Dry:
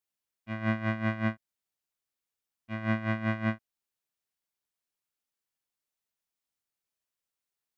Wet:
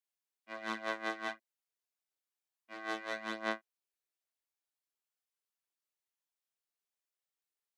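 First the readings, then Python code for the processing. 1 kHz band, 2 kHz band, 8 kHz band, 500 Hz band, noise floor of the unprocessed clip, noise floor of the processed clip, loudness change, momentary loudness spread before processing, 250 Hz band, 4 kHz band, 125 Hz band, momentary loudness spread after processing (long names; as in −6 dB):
−2.5 dB, −4.0 dB, can't be measured, −4.0 dB, below −85 dBFS, below −85 dBFS, −7.5 dB, 11 LU, −15.0 dB, +2.5 dB, below −30 dB, 10 LU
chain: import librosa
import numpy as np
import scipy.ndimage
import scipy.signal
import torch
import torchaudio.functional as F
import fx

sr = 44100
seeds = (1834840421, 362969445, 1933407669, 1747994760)

y = fx.tracing_dist(x, sr, depth_ms=0.13)
y = scipy.signal.sosfilt(scipy.signal.butter(4, 330.0, 'highpass', fs=sr, output='sos'), y)
y = fx.chorus_voices(y, sr, voices=2, hz=0.7, base_ms=26, depth_ms=1.4, mix_pct=45)
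y = y * librosa.db_to_amplitude(-2.0)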